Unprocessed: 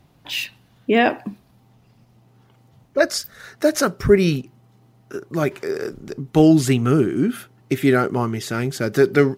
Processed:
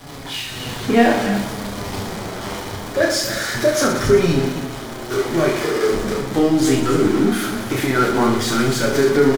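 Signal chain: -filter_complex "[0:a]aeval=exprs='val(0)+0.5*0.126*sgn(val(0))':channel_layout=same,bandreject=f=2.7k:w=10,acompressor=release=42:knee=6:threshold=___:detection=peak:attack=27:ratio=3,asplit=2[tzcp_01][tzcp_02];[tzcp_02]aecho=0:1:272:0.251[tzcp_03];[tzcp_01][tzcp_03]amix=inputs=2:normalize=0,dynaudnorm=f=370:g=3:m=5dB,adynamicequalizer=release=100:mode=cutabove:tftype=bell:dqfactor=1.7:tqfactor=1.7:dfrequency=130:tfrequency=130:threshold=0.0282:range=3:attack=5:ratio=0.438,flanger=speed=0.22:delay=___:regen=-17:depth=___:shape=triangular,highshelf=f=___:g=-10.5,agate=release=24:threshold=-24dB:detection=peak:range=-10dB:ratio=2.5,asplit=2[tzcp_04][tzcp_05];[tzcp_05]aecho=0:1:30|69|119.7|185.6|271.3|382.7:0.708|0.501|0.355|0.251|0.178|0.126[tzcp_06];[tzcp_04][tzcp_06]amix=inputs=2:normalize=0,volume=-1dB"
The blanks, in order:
-16dB, 7, 3.6, 12k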